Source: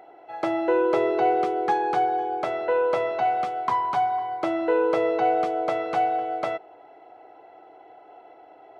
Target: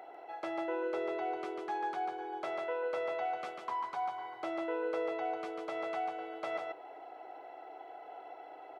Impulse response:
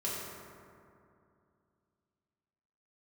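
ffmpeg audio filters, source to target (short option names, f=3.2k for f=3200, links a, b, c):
-af "highpass=f=470:p=1,areverse,acompressor=threshold=-34dB:ratio=10,areverse,aecho=1:1:145:0.596"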